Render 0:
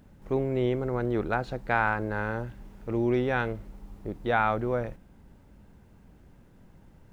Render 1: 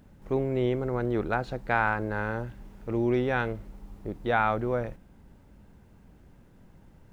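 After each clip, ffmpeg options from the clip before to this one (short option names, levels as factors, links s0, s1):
-af anull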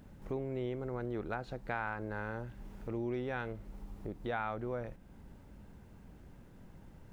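-af "acompressor=threshold=0.00708:ratio=2"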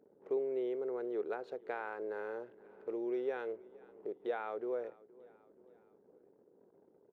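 -af "anlmdn=0.000251,highpass=f=420:t=q:w=4.9,aecho=1:1:472|944|1416:0.0708|0.0368|0.0191,volume=0.473"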